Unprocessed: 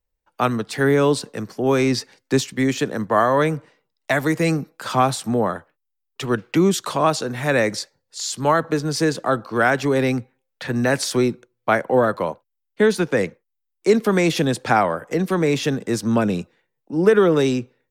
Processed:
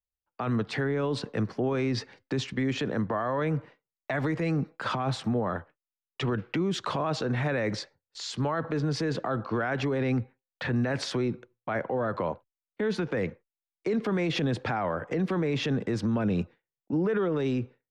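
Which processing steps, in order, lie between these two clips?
low-pass 3.1 kHz 12 dB/octave; gate with hold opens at -44 dBFS; peaking EQ 76 Hz +7.5 dB 1.4 oct; peak limiter -20.5 dBFS, peak gain reduction 17 dB

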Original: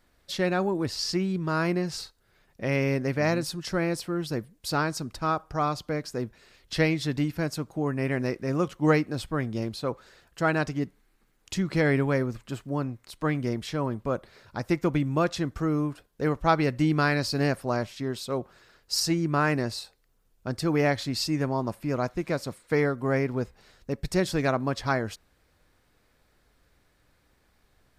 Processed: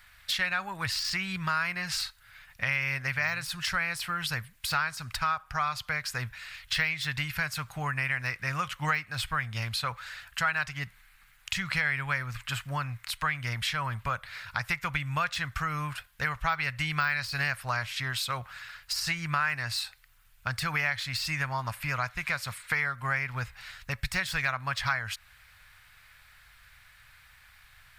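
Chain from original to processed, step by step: de-esser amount 80%; FFT filter 120 Hz 0 dB, 330 Hz -26 dB, 770 Hz -3 dB, 1.5 kHz +10 dB, 2.4 kHz +12 dB, 5.9 kHz +3 dB, 13 kHz +8 dB; compression 3:1, threshold -34 dBFS, peak gain reduction 14.5 dB; trim +5 dB

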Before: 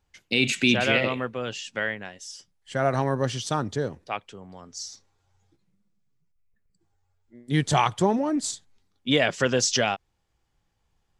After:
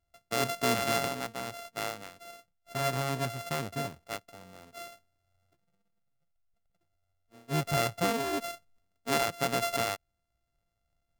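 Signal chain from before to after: sorted samples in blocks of 64 samples; trim -7 dB

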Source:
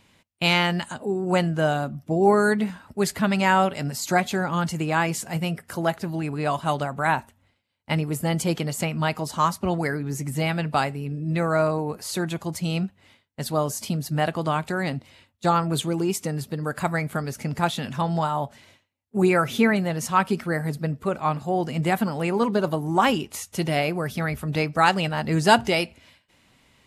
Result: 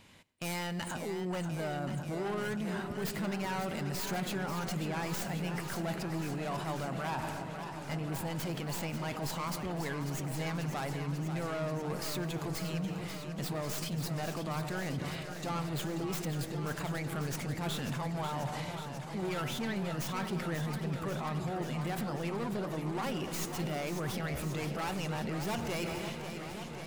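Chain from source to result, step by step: tracing distortion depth 0.31 ms; saturation -20.5 dBFS, distortion -9 dB; on a send at -19 dB: reverberation RT60 1.3 s, pre-delay 76 ms; on the sum: level rider gain up to 7 dB; peak limiter -23.5 dBFS, peak gain reduction 11.5 dB; reverse; compression 6:1, threshold -35 dBFS, peak gain reduction 9 dB; reverse; modulated delay 539 ms, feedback 80%, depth 97 cents, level -9 dB

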